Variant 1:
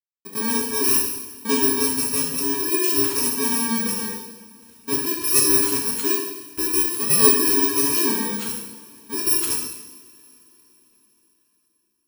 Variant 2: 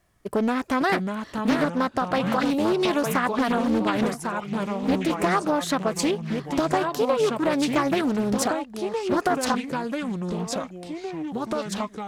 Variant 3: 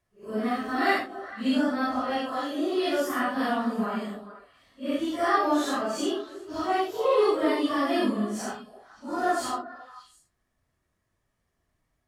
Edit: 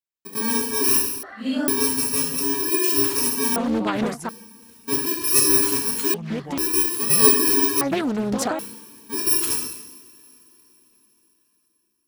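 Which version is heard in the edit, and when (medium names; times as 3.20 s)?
1
1.23–1.68 s: from 3
3.56–4.29 s: from 2
6.14–6.58 s: from 2
7.81–8.59 s: from 2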